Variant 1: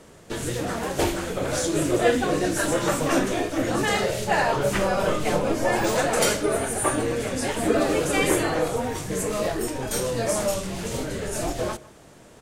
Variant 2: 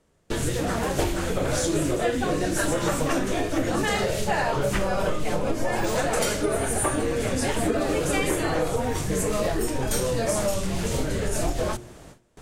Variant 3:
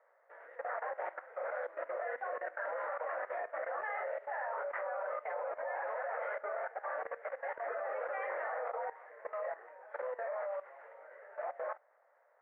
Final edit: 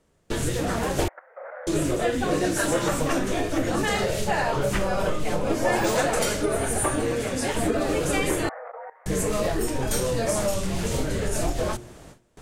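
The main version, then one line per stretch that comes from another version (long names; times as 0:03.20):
2
0:01.08–0:01.67: punch in from 3
0:02.31–0:02.88: punch in from 1
0:05.50–0:06.11: punch in from 1
0:07.03–0:07.55: punch in from 1
0:08.49–0:09.06: punch in from 3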